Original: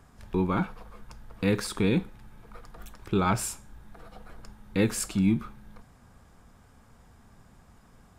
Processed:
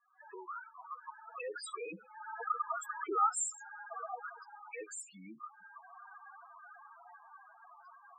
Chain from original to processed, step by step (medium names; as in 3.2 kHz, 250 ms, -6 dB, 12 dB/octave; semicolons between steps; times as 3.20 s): recorder AGC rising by 75 dB/s; Doppler pass-by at 2.85 s, 6 m/s, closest 4.1 m; Bessel high-pass 1 kHz, order 2; loudest bins only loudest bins 4; high-order bell 3.5 kHz -9 dB 1.2 oct; trim +6.5 dB